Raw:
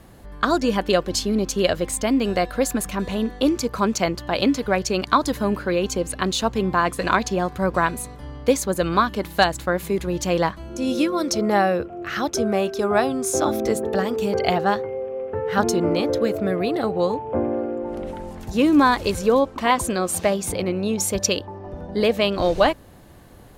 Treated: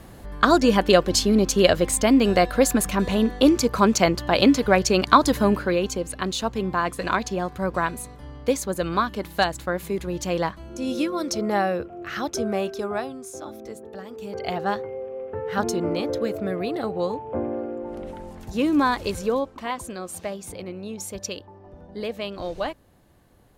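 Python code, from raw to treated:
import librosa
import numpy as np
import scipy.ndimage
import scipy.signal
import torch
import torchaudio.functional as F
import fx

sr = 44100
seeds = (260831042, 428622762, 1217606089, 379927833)

y = fx.gain(x, sr, db=fx.line((5.46, 3.0), (6.02, -4.0), (12.7, -4.0), (13.37, -16.0), (14.02, -16.0), (14.7, -4.5), (19.2, -4.5), (19.74, -11.0)))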